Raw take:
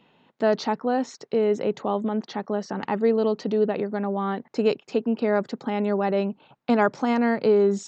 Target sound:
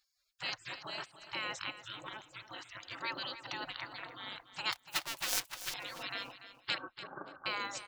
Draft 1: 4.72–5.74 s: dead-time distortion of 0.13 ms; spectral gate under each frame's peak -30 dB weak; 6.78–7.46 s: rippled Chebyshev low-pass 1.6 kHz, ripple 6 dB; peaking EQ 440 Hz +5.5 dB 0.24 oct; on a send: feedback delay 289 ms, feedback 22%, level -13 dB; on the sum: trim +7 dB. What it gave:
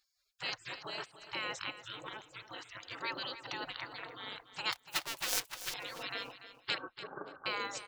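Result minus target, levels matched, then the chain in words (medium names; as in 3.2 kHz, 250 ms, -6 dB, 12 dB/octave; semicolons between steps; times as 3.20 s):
500 Hz band +2.5 dB
4.72–5.74 s: dead-time distortion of 0.13 ms; spectral gate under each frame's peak -30 dB weak; 6.78–7.46 s: rippled Chebyshev low-pass 1.6 kHz, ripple 6 dB; peaking EQ 440 Hz -5.5 dB 0.24 oct; on a send: feedback delay 289 ms, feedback 22%, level -13 dB; on the sum: trim +7 dB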